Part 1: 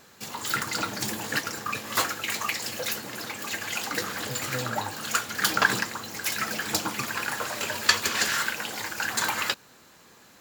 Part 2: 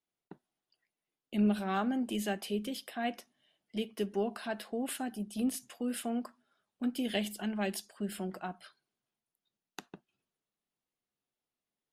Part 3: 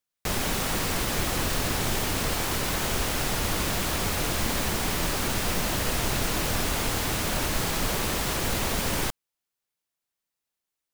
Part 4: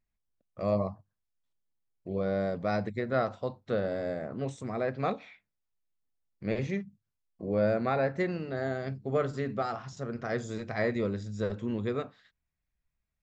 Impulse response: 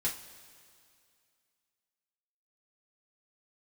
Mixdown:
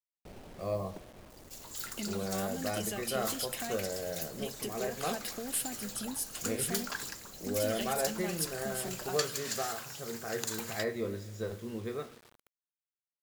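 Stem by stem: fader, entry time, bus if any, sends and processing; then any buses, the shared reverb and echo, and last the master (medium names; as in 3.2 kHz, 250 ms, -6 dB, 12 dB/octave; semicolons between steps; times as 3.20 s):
-19.0 dB, 1.30 s, no send, none
+2.0 dB, 0.65 s, no send, compression, threshold -39 dBFS, peak gain reduction 14.5 dB
-15.5 dB, 0.00 s, no send, inverse Chebyshev low-pass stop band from 3.3 kHz, stop band 70 dB; auto duck -9 dB, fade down 1.40 s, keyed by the fourth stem
-8.0 dB, 0.00 s, send -6 dB, treble shelf 2.9 kHz -7 dB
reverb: on, pre-delay 3 ms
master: tone controls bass -3 dB, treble +12 dB; bit crusher 9-bit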